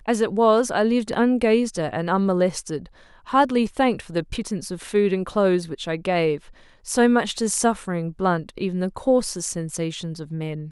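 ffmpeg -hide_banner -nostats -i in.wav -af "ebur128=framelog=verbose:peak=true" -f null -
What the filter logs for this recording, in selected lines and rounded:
Integrated loudness:
  I:         -22.4 LUFS
  Threshold: -32.6 LUFS
Loudness range:
  LRA:         2.7 LU
  Threshold: -42.7 LUFS
  LRA low:   -24.2 LUFS
  LRA high:  -21.5 LUFS
True peak:
  Peak:       -5.6 dBFS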